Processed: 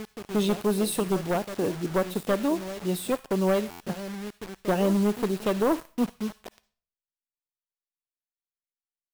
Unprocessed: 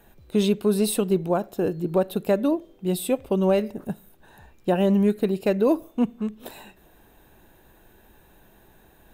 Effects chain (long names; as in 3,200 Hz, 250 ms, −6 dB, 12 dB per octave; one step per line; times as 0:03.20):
wavefolder on the positive side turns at −16.5 dBFS
backwards echo 813 ms −13.5 dB
low-pass that shuts in the quiet parts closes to 1,200 Hz, open at −21.5 dBFS
dynamic equaliser 1,100 Hz, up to +4 dB, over −42 dBFS, Q 1.3
bit-depth reduction 6 bits, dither none
on a send at −12 dB: guitar amp tone stack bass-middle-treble 10-0-10 + convolution reverb RT60 0.50 s, pre-delay 50 ms
on the sum: buffer that repeats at 0:03.70, samples 512, times 8
level −3.5 dB